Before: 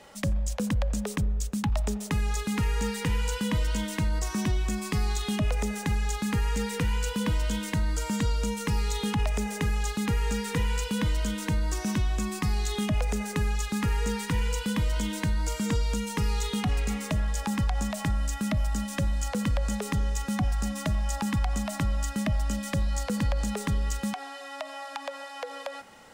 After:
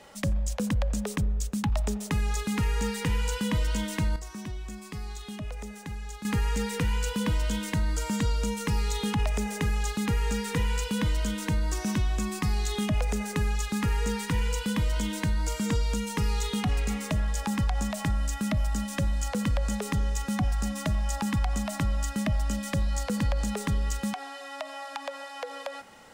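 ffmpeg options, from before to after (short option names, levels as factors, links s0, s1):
-filter_complex "[0:a]asplit=3[s0][s1][s2];[s0]atrim=end=4.162[s3];[s1]atrim=start=4.158:end=6.252,asetpts=PTS-STARTPTS,volume=0.316[s4];[s2]atrim=start=6.248[s5];[s3][s4]acrossfade=d=0.004:c1=hsin:c2=hsin[s6];[s6][s5]acrossfade=d=0.004:c1=hsin:c2=hsin"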